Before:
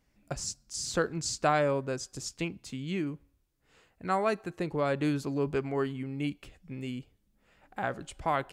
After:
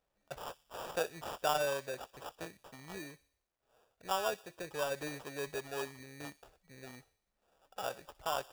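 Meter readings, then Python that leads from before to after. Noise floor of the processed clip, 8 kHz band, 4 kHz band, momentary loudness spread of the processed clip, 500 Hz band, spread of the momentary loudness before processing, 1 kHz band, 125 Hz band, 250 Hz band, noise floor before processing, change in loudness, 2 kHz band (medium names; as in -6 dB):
-84 dBFS, -9.0 dB, -3.0 dB, 18 LU, -7.0 dB, 12 LU, -6.0 dB, -17.0 dB, -16.5 dB, -72 dBFS, -7.0 dB, -5.5 dB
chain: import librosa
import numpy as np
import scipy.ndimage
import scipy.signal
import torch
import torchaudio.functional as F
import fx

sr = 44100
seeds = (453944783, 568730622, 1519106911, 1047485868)

y = fx.sample_hold(x, sr, seeds[0], rate_hz=2100.0, jitter_pct=0)
y = fx.low_shelf_res(y, sr, hz=380.0, db=-9.0, q=1.5)
y = fx.echo_wet_highpass(y, sr, ms=61, feedback_pct=53, hz=2900.0, wet_db=-16.0)
y = fx.quant_companded(y, sr, bits=8)
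y = y * 10.0 ** (-7.0 / 20.0)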